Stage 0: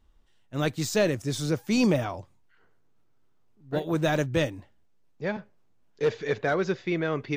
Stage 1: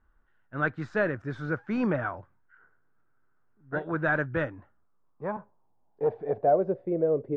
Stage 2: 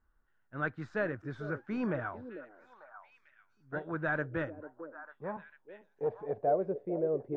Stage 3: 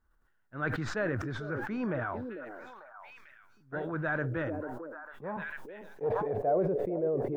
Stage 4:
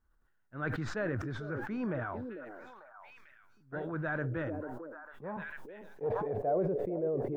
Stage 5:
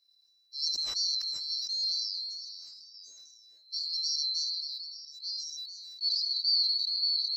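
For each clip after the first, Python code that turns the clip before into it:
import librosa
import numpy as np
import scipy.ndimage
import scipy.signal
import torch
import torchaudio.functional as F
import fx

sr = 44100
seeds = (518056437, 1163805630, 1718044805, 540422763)

y1 = fx.filter_sweep_lowpass(x, sr, from_hz=1500.0, to_hz=520.0, start_s=4.39, end_s=7.12, q=5.6)
y1 = F.gain(torch.from_numpy(y1), -5.0).numpy()
y2 = fx.echo_stepped(y1, sr, ms=447, hz=390.0, octaves=1.4, feedback_pct=70, wet_db=-7.5)
y2 = F.gain(torch.from_numpy(y2), -6.5).numpy()
y3 = fx.sustainer(y2, sr, db_per_s=22.0)
y4 = fx.low_shelf(y3, sr, hz=450.0, db=3.0)
y4 = F.gain(torch.from_numpy(y4), -4.0).numpy()
y5 = fx.band_swap(y4, sr, width_hz=4000)
y5 = F.gain(torch.from_numpy(y5), 3.0).numpy()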